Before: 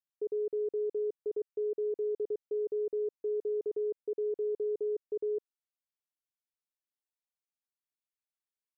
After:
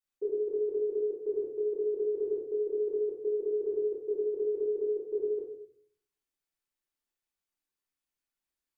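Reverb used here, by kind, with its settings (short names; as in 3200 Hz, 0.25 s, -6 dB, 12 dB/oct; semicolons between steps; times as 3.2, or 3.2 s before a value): shoebox room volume 74 m³, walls mixed, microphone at 3.2 m; gain -8 dB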